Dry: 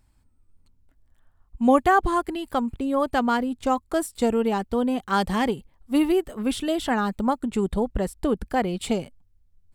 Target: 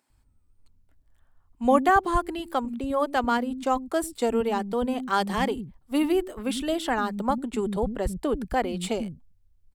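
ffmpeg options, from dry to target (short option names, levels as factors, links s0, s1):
-filter_complex "[0:a]acrossover=split=230[s0][s1];[s0]adelay=100[s2];[s2][s1]amix=inputs=2:normalize=0,volume=0.891"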